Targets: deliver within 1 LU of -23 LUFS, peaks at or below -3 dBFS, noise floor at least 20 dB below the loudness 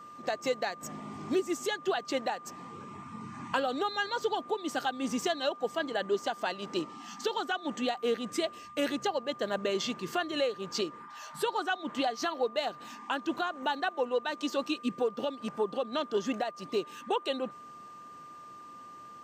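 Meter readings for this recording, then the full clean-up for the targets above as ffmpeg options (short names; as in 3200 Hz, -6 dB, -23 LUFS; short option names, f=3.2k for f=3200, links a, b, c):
steady tone 1200 Hz; tone level -46 dBFS; loudness -33.0 LUFS; peak -16.0 dBFS; loudness target -23.0 LUFS
-> -af "bandreject=f=1.2k:w=30"
-af "volume=10dB"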